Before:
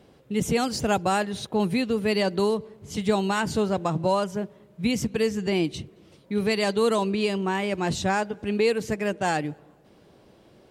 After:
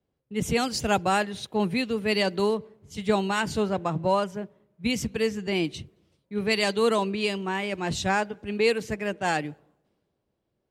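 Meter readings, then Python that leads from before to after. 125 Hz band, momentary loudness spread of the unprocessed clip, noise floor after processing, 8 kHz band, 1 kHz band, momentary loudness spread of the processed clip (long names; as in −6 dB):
−2.5 dB, 7 LU, −78 dBFS, −1.0 dB, −0.5 dB, 8 LU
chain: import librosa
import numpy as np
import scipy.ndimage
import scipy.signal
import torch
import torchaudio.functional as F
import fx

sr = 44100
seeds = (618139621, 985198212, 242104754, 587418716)

y = fx.dynamic_eq(x, sr, hz=2400.0, q=0.84, threshold_db=-42.0, ratio=4.0, max_db=4)
y = fx.band_widen(y, sr, depth_pct=70)
y = y * librosa.db_to_amplitude(-2.0)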